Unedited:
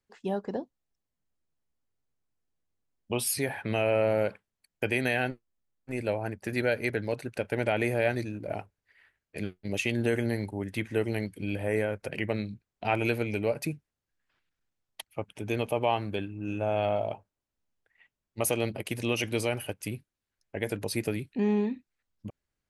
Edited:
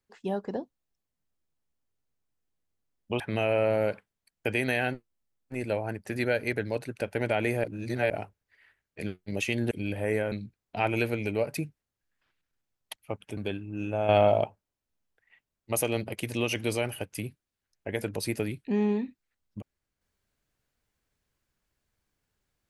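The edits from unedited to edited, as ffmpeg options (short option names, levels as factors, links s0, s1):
-filter_complex "[0:a]asplit=9[s0][s1][s2][s3][s4][s5][s6][s7][s8];[s0]atrim=end=3.202[s9];[s1]atrim=start=3.568:end=8.012[s10];[s2]atrim=start=8.008:end=8.472,asetpts=PTS-STARTPTS,areverse[s11];[s3]atrim=start=8.468:end=10.082[s12];[s4]atrim=start=11.338:end=11.952[s13];[s5]atrim=start=12.398:end=15.452[s14];[s6]atrim=start=16.048:end=16.772[s15];[s7]atrim=start=16.768:end=17.122,asetpts=PTS-STARTPTS,volume=2.24[s16];[s8]atrim=start=17.118[s17];[s9][s10]acrossfade=d=0.004:c1=hsin:c2=hsin[s18];[s18][s11]acrossfade=d=0.004:c1=hsin:c2=hsin[s19];[s19][s12]acrossfade=d=0.004:c1=hsin:c2=hsin[s20];[s20][s13]acrossfade=d=0.004:c1=hsin:c2=hsin[s21];[s21][s14]acrossfade=d=0.004:c1=hsin:c2=hsin[s22];[s22][s15]acrossfade=d=0.004:c1=hsin:c2=hsin[s23];[s23][s16]acrossfade=d=0.004:c1=hsin:c2=hsin[s24];[s24][s17]acrossfade=d=0.004:c1=hsin:c2=hsin"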